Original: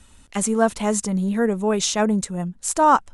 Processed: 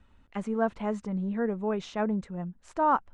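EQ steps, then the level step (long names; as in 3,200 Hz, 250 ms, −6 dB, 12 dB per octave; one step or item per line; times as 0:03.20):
low-pass filter 2,100 Hz 12 dB per octave
−8.5 dB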